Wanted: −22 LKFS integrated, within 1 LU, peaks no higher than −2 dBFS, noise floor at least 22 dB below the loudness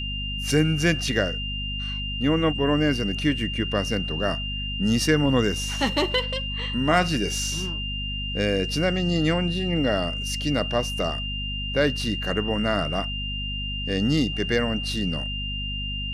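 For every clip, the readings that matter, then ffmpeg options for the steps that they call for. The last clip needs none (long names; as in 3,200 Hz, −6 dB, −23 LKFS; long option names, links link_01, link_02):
mains hum 50 Hz; hum harmonics up to 250 Hz; level of the hum −29 dBFS; interfering tone 2,800 Hz; level of the tone −30 dBFS; integrated loudness −24.5 LKFS; sample peak −7.0 dBFS; target loudness −22.0 LKFS
→ -af "bandreject=frequency=50:width_type=h:width=6,bandreject=frequency=100:width_type=h:width=6,bandreject=frequency=150:width_type=h:width=6,bandreject=frequency=200:width_type=h:width=6,bandreject=frequency=250:width_type=h:width=6"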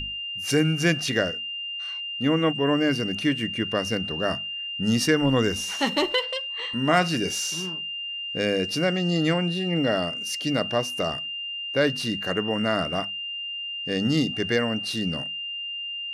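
mains hum none found; interfering tone 2,800 Hz; level of the tone −30 dBFS
→ -af "bandreject=frequency=2800:width=30"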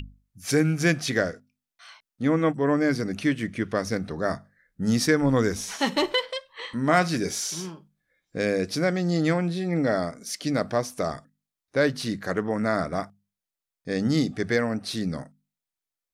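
interfering tone none found; integrated loudness −26.0 LKFS; sample peak −8.0 dBFS; target loudness −22.0 LKFS
→ -af "volume=4dB"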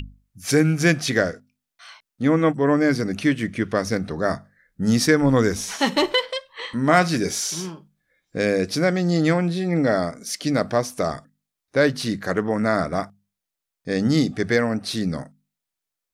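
integrated loudness −22.0 LKFS; sample peak −4.0 dBFS; background noise floor −85 dBFS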